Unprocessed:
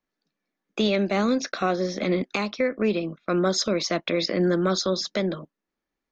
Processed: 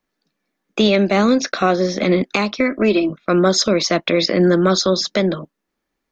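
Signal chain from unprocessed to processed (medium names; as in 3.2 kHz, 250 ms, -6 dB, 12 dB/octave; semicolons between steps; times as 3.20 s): 2.60–3.10 s: comb 3.1 ms, depth 70%; trim +8 dB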